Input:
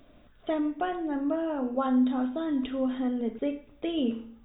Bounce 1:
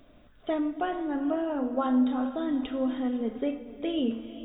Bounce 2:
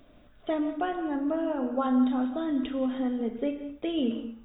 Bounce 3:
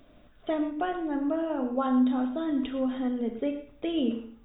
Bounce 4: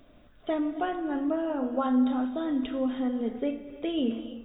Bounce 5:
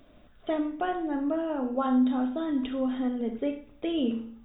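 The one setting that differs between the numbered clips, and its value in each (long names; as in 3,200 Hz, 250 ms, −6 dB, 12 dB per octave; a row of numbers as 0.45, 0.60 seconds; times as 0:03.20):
reverb whose tail is shaped and stops, gate: 530, 220, 140, 350, 90 milliseconds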